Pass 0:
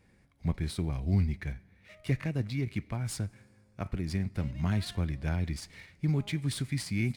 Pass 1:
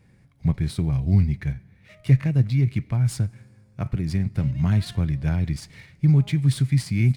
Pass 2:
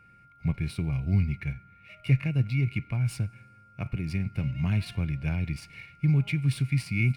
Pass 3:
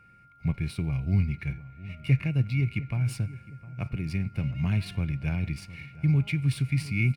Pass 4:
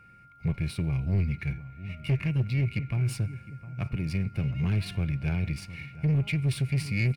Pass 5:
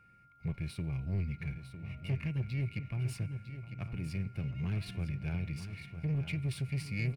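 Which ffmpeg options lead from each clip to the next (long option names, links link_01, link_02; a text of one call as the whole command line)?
ffmpeg -i in.wav -af "equalizer=frequency=130:width=1.7:gain=11.5,volume=3dB" out.wav
ffmpeg -i in.wav -af "superequalizer=12b=3.55:15b=0.631,aeval=exprs='val(0)+0.00355*sin(2*PI*1400*n/s)':channel_layout=same,volume=-6dB" out.wav
ffmpeg -i in.wav -filter_complex "[0:a]asplit=2[link_01][link_02];[link_02]adelay=709,lowpass=frequency=1500:poles=1,volume=-17dB,asplit=2[link_03][link_04];[link_04]adelay=709,lowpass=frequency=1500:poles=1,volume=0.5,asplit=2[link_05][link_06];[link_06]adelay=709,lowpass=frequency=1500:poles=1,volume=0.5,asplit=2[link_07][link_08];[link_08]adelay=709,lowpass=frequency=1500:poles=1,volume=0.5[link_09];[link_01][link_03][link_05][link_07][link_09]amix=inputs=5:normalize=0" out.wav
ffmpeg -i in.wav -af "asoftclip=type=tanh:threshold=-22dB,volume=2dB" out.wav
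ffmpeg -i in.wav -af "aecho=1:1:953|1906|2859:0.316|0.0569|0.0102,volume=-8dB" out.wav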